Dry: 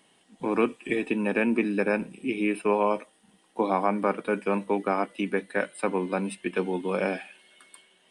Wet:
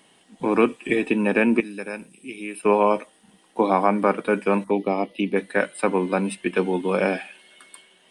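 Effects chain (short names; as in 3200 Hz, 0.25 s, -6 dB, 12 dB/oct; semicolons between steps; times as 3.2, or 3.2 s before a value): 1.6–2.63 pre-emphasis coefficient 0.8; 4.64–5.36 envelope phaser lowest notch 460 Hz, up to 1500 Hz; gain +5.5 dB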